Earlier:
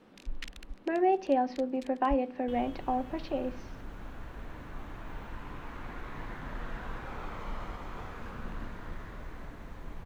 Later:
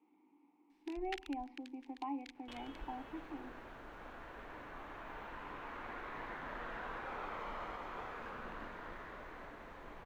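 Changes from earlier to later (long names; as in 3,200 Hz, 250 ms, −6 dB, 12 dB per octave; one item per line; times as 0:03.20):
speech: add formant filter u
first sound: entry +0.70 s
master: add bass and treble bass −15 dB, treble −9 dB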